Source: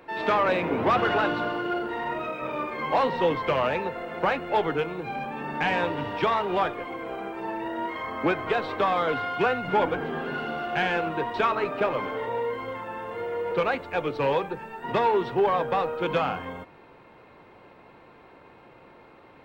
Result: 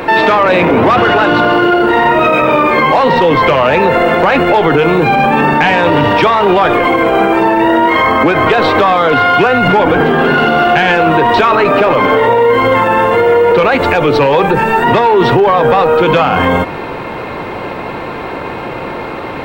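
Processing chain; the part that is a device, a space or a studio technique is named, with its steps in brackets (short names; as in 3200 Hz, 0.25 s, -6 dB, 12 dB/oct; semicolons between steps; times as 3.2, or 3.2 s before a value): loud club master (compressor 2:1, threshold -28 dBFS, peak gain reduction 6 dB; hard clip -19.5 dBFS, distortion -34 dB; maximiser +31 dB); gain -1 dB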